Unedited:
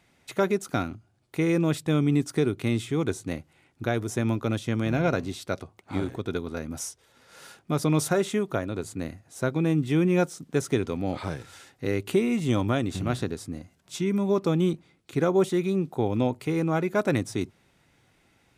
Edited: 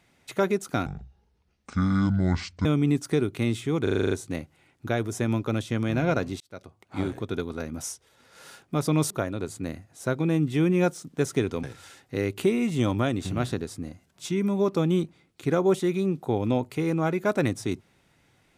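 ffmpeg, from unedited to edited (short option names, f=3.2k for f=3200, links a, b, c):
-filter_complex "[0:a]asplit=13[a][b][c][d][e][f][g][h][i][j][k][l][m];[a]atrim=end=0.864[n];[b]atrim=start=0.86:end=1.9,asetpts=PTS-STARTPTS,asetrate=25578,aresample=44100[o];[c]atrim=start=1.896:end=3.122[p];[d]atrim=start=3.078:end=3.122[q];[e]atrim=start=3.078:end=3.122[r];[f]atrim=start=3.078:end=3.122[s];[g]atrim=start=3.078:end=3.122[t];[h]atrim=start=3.078:end=3.122[u];[i]atrim=start=3.078:end=3.122[v];[j]atrim=start=3.078:end=5.37,asetpts=PTS-STARTPTS,afade=t=out:st=2.288:d=0.004:c=hsin[w];[k]atrim=start=5.37:end=8.072,asetpts=PTS-STARTPTS,afade=t=in:d=0.59[x];[l]atrim=start=8.458:end=10.992[y];[m]atrim=start=11.328[z];[n][o]acrossfade=d=0.004:c1=hsin:c2=hsin[aa];[aa][p]acrossfade=d=0.004:c1=hsin:c2=hsin[ab];[ab][q]acrossfade=d=0.004:c1=hsin:c2=hsin[ac];[ac][r]acrossfade=d=0.004:c1=hsin:c2=hsin[ad];[ad][s]acrossfade=d=0.004:c1=hsin:c2=hsin[ae];[ae][t]acrossfade=d=0.004:c1=hsin:c2=hsin[af];[af][u]acrossfade=d=0.004:c1=hsin:c2=hsin[ag];[ag][v]acrossfade=d=0.004:c1=hsin:c2=hsin[ah];[w][x]concat=n=2:v=0:a=1[ai];[ah][ai]acrossfade=d=0.004:c1=hsin:c2=hsin[aj];[aj][y]acrossfade=d=0.004:c1=hsin:c2=hsin[ak];[ak][z]acrossfade=d=0.004:c1=hsin:c2=hsin"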